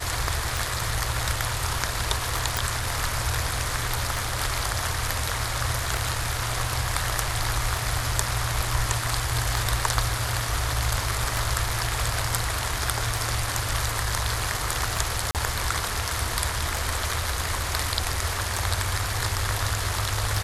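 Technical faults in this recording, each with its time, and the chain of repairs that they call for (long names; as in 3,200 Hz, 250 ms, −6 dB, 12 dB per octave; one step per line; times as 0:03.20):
scratch tick 33 1/3 rpm
0:02.57: click
0:15.31–0:15.35: drop-out 38 ms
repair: click removal
repair the gap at 0:15.31, 38 ms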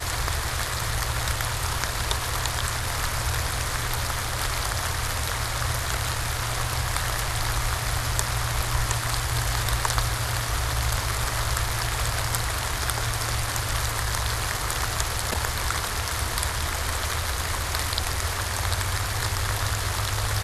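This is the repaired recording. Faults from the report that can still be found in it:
none of them is left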